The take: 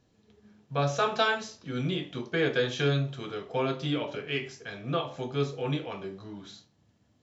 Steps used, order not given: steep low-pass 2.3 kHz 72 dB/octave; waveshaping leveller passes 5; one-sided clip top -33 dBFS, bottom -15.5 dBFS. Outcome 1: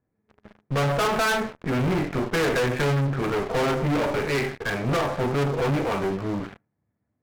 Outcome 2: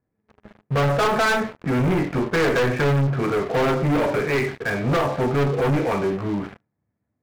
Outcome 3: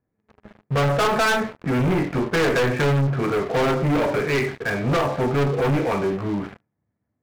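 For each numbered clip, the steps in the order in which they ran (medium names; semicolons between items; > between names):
steep low-pass > waveshaping leveller > one-sided clip; one-sided clip > steep low-pass > waveshaping leveller; steep low-pass > one-sided clip > waveshaping leveller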